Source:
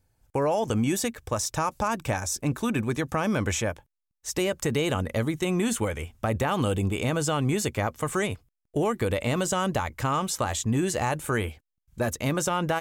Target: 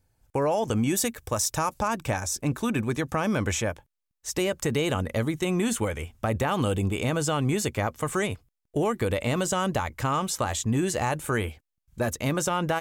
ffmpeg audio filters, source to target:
ffmpeg -i in.wav -filter_complex "[0:a]asettb=1/sr,asplit=3[link_01][link_02][link_03];[link_01]atrim=end=0.974[link_04];[link_02]atrim=start=0.97:end=1.74,asetpts=PTS-STARTPTS,afade=type=in:duration=0.004:curve=qsin,afade=type=out:start_time=0.766:duration=0.004:curve=qsin,highshelf=frequency=8500:gain=9[link_05];[link_03]atrim=start=1.736[link_06];[link_04][link_05]acrossfade=duration=0.004:curve1=hsin:curve2=qsin[link_07];[link_07][link_06]acrossfade=duration=0.004:curve1=qsin:curve2=hsin" out.wav

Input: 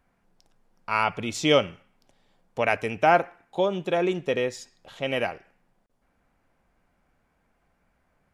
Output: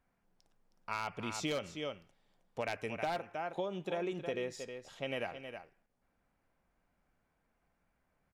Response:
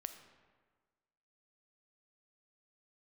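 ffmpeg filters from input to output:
-af "aecho=1:1:316:0.282,aeval=exprs='0.237*(abs(mod(val(0)/0.237+3,4)-2)-1)':channel_layout=same,acompressor=threshold=-24dB:ratio=6,volume=-9dB"

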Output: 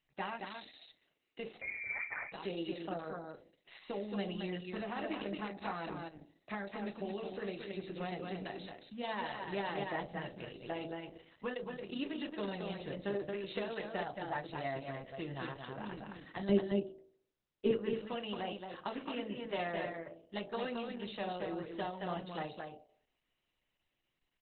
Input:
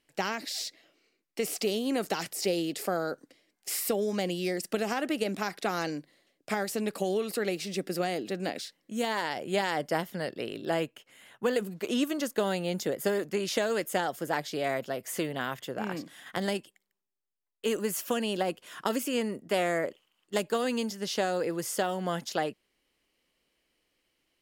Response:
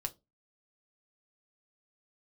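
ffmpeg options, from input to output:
-filter_complex "[0:a]asettb=1/sr,asplit=3[link_01][link_02][link_03];[link_01]atrim=end=16.494[link_04];[link_02]atrim=start=16.49:end=17.71,asetpts=PTS-STARTPTS,afade=type=in:duration=0.004:curve=qsin,afade=type=out:start_time=1.216:duration=0.004:curve=qsin,lowshelf=frequency=600:width_type=q:width=1.5:gain=12.5[link_05];[link_03]atrim=start=17.706[link_06];[link_04][link_05]acrossfade=duration=0.004:curve1=hsin:curve2=qsin[link_07];[link_07][link_06]acrossfade=duration=0.004:curve1=qsin:curve2=hsin,bandreject=frequency=54.87:width_type=h:width=4,bandreject=frequency=109.74:width_type=h:width=4,bandreject=frequency=164.61:width_type=h:width=4,bandreject=frequency=219.48:width_type=h:width=4,bandreject=frequency=274.35:width_type=h:width=4,bandreject=frequency=329.22:width_type=h:width=4,bandreject=frequency=384.09:width_type=h:width=4,bandreject=frequency=438.96:width_type=h:width=4,bandreject=frequency=493.83:width_type=h:width=4,bandreject=frequency=548.7:width_type=h:width=4,bandreject=frequency=603.57:width_type=h:width=4,bandreject=frequency=658.44:width_type=h:width=4,bandreject=frequency=713.31:width_type=h:width=4,bandreject=frequency=768.18:width_type=h:width=4,bandreject=frequency=823.05:width_type=h:width=4,asplit=3[link_08][link_09][link_10];[link_08]afade=type=out:start_time=11.52:duration=0.02[link_11];[link_09]tremolo=f=30:d=0.667,afade=type=in:start_time=11.52:duration=0.02,afade=type=out:start_time=11.99:duration=0.02[link_12];[link_10]afade=type=in:start_time=11.99:duration=0.02[link_13];[link_11][link_12][link_13]amix=inputs=3:normalize=0,aecho=1:1:223:0.596[link_14];[1:a]atrim=start_sample=2205,afade=type=out:start_time=0.2:duration=0.01,atrim=end_sample=9261[link_15];[link_14][link_15]afir=irnorm=-1:irlink=0,asettb=1/sr,asplit=3[link_16][link_17][link_18];[link_16]atrim=end=1.614[link_19];[link_17]atrim=start=1.61:end=2.32,asetpts=PTS-STARTPTS,afade=type=in:duration=0.004:curve=qsin,afade=type=out:start_time=0.706:duration=0.004:curve=qsin,lowpass=frequency=2200:width_type=q:width=0.5098,lowpass=frequency=2200:width_type=q:width=0.6013,lowpass=frequency=2200:width_type=q:width=0.9,lowpass=frequency=2200:width_type=q:width=2.563,afreqshift=-2600[link_20];[link_18]atrim=start=2.316[link_21];[link_19][link_20]acrossfade=duration=0.004:curve1=hsin:curve2=qsin[link_22];[link_22][link_21]acrossfade=duration=0.004:curve1=qsin:curve2=hsin,volume=-7.5dB" -ar 48000 -c:a libopus -b:a 8k

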